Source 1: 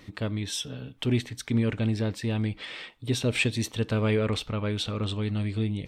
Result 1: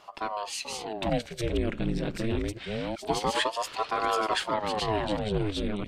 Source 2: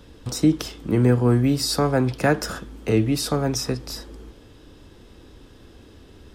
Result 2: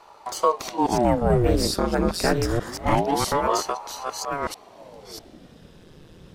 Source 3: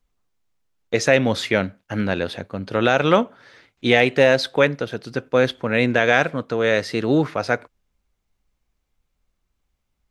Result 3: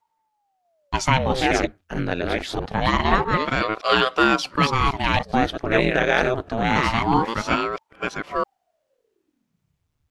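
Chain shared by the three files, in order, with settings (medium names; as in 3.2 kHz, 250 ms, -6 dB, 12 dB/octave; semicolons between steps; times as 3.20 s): chunks repeated in reverse 649 ms, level -2.5 dB; ring modulator with a swept carrier 490 Hz, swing 85%, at 0.25 Hz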